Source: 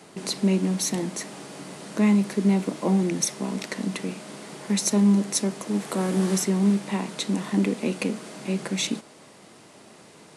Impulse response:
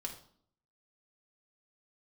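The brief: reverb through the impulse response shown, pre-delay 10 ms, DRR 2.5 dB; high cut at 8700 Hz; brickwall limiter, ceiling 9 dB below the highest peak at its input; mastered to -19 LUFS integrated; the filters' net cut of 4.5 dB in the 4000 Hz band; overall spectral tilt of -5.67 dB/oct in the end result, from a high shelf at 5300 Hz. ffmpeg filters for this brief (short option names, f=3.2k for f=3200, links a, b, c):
-filter_complex "[0:a]lowpass=8.7k,equalizer=f=4k:t=o:g=-3,highshelf=f=5.3k:g=-5,alimiter=limit=-20dB:level=0:latency=1,asplit=2[a][b];[1:a]atrim=start_sample=2205,adelay=10[c];[b][c]afir=irnorm=-1:irlink=0,volume=-1.5dB[d];[a][d]amix=inputs=2:normalize=0,volume=7dB"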